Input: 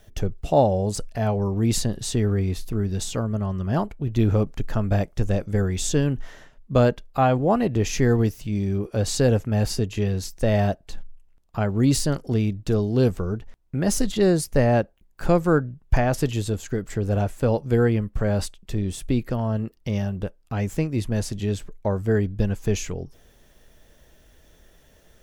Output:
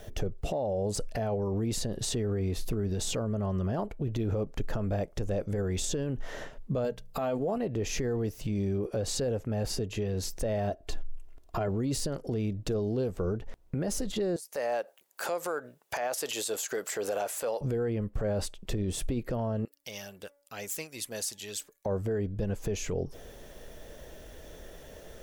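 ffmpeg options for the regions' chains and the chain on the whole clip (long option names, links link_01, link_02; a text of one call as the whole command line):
ffmpeg -i in.wav -filter_complex "[0:a]asettb=1/sr,asplit=3[link_01][link_02][link_03];[link_01]atrim=end=6.844[link_04];[link_02]atrim=start=6.84:end=7.58,asetpts=PTS-STARTPTS,afade=type=in:duration=0.004:curve=qsin,afade=type=out:start_time=0.736:duration=0.004:curve=qsin,highshelf=frequency=4500:gain=11,bandreject=frequency=60:width_type=h:width=6,bandreject=frequency=120:width_type=h:width=6,bandreject=frequency=180:width_type=h:width=6,aecho=1:1:4.5:0.48,atrim=end_sample=32634[link_05];[link_03]atrim=start=7.576[link_06];[link_04][link_05]acrossfade=duration=0.004:curve1=hsin:curve2=qsin[link_07];[link_07][link_06]acrossfade=duration=0.004:curve1=qsin:curve2=hsin,asettb=1/sr,asplit=3[link_08][link_09][link_10];[link_08]atrim=end=10.704[link_11];[link_09]atrim=start=10.7:end=11.68,asetpts=PTS-STARTPTS,afade=type=in:duration=0.004:curve=qsin,afade=type=out:start_time=0.976:duration=0.004:curve=qsin,aecho=1:1:2.9:0.57,atrim=end_sample=43218,acompressor=threshold=-33dB:ratio=1.5:attack=3.2:release=140:knee=1:detection=peak[link_12];[link_10]atrim=start=11.676[link_13];[link_11][link_12]acrossfade=duration=0.004:curve1=hsin:curve2=qsin[link_14];[link_14][link_13]acrossfade=duration=0.004:curve1=qsin:curve2=hsin,asettb=1/sr,asplit=3[link_15][link_16][link_17];[link_15]atrim=end=14.364[link_18];[link_16]atrim=start=14.36:end=17.61,asetpts=PTS-STARTPTS,afade=type=in:duration=0.004:curve=qsin,afade=type=out:start_time=3.246:duration=0.004:curve=qsin,highpass=690,highshelf=frequency=4900:gain=11,acompressor=threshold=-37dB:ratio=4:attack=3.2:release=140:knee=1:detection=peak[link_19];[link_17]atrim=start=17.606[link_20];[link_18][link_19]acrossfade=duration=0.004:curve1=hsin:curve2=qsin[link_21];[link_21][link_20]acrossfade=duration=0.004:curve1=qsin:curve2=hsin,asettb=1/sr,asplit=3[link_22][link_23][link_24];[link_22]atrim=end=19.654[link_25];[link_23]atrim=start=19.65:end=21.86,asetpts=PTS-STARTPTS,afade=type=in:duration=0.004:curve=qsin,afade=type=out:start_time=2.206:duration=0.004:curve=qsin,bandreject=frequency=285.2:width_type=h:width=4,bandreject=frequency=570.4:width_type=h:width=4,bandreject=frequency=855.6:width_type=h:width=4,bandreject=frequency=1140.8:width_type=h:width=4,bandreject=frequency=1426:width_type=h:width=4,bandreject=frequency=1711.2:width_type=h:width=4,bandreject=frequency=1996.4:width_type=h:width=4,bandreject=frequency=2281.6:width_type=h:width=4,aphaser=in_gain=1:out_gain=1:delay=1.4:decay=0.33:speed=2:type=triangular,aderivative[link_26];[link_24]atrim=start=21.856[link_27];[link_25][link_26]acrossfade=duration=0.004:curve1=hsin:curve2=qsin[link_28];[link_28][link_27]acrossfade=duration=0.004:curve1=qsin:curve2=hsin,equalizer=frequency=510:width=1.2:gain=7.5,acompressor=threshold=-31dB:ratio=5,alimiter=level_in=4.5dB:limit=-24dB:level=0:latency=1:release=19,volume=-4.5dB,volume=5.5dB" out.wav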